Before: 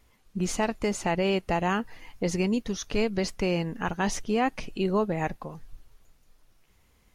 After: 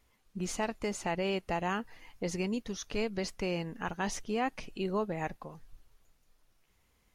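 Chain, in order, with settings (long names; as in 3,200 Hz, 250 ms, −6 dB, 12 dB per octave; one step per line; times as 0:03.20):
low-shelf EQ 360 Hz −3 dB
level −5.5 dB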